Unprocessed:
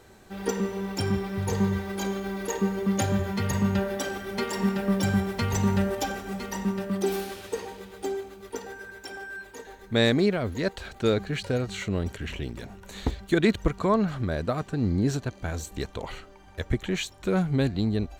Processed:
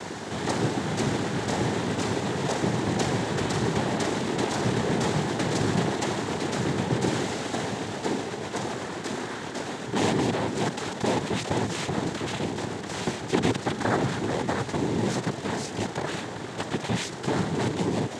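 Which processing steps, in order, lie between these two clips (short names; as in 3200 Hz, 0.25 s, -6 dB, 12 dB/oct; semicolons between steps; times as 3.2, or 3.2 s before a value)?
per-bin compression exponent 0.4; noise vocoder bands 6; gain -6 dB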